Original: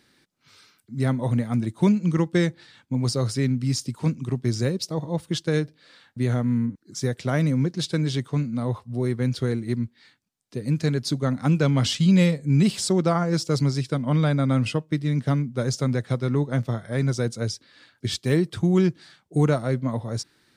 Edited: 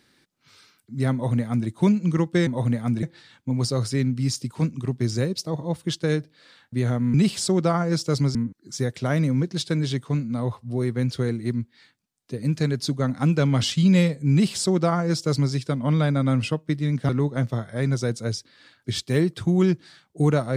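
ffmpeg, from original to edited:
-filter_complex "[0:a]asplit=6[a][b][c][d][e][f];[a]atrim=end=2.472[g];[b]atrim=start=1.128:end=1.692[h];[c]atrim=start=2.468:end=6.582[i];[d]atrim=start=12.548:end=13.762[j];[e]atrim=start=6.578:end=15.322[k];[f]atrim=start=16.248[l];[g][h]acrossfade=d=0.004:c1=hsin:c2=hsin[m];[m][i]acrossfade=d=0.004:c1=hsin:c2=hsin[n];[n][j]acrossfade=d=0.004:c1=hsin:c2=hsin[o];[o][k]acrossfade=d=0.004:c1=hsin:c2=hsin[p];[p][l]acrossfade=d=0.004:c1=hsin:c2=hsin"

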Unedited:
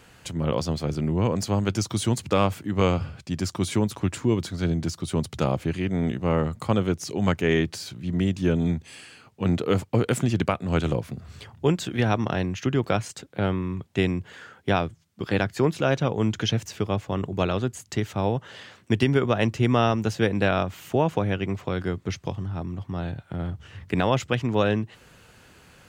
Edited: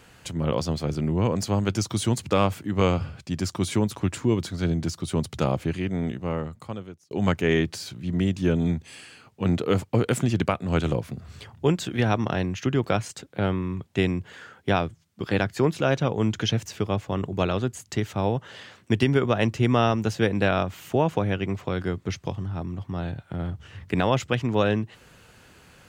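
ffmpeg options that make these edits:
-filter_complex "[0:a]asplit=2[a][b];[a]atrim=end=7.11,asetpts=PTS-STARTPTS,afade=t=out:st=5.65:d=1.46[c];[b]atrim=start=7.11,asetpts=PTS-STARTPTS,afade=t=in:d=0.004:c=hsin[d];[c][d]concat=n=2:v=0:a=1"

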